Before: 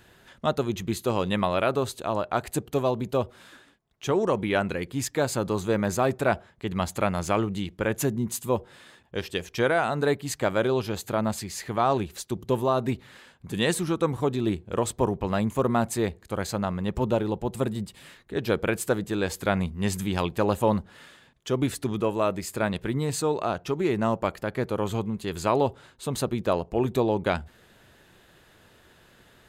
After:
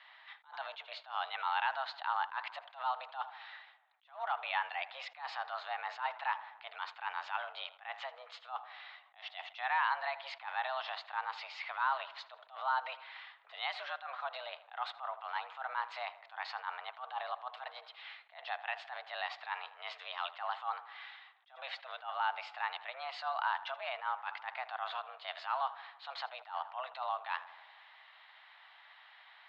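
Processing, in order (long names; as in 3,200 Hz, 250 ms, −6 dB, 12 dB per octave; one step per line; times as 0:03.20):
brickwall limiter −21.5 dBFS, peak gain reduction 11.5 dB
single-sideband voice off tune +260 Hz 570–3,600 Hz
on a send: tape delay 80 ms, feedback 70%, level −16 dB, low-pass 2,900 Hz
on the sum: level that may rise only so fast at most 190 dB per second
level +1 dB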